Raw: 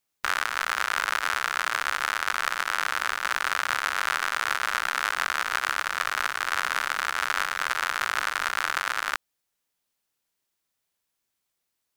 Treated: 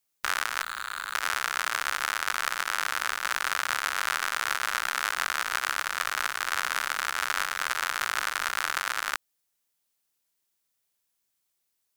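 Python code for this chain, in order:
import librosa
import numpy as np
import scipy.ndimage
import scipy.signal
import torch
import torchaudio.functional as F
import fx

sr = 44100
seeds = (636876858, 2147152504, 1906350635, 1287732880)

y = fx.clip_hard(x, sr, threshold_db=-23.0, at=(0.62, 1.15))
y = fx.high_shelf(y, sr, hz=4900.0, db=7.0)
y = F.gain(torch.from_numpy(y), -3.0).numpy()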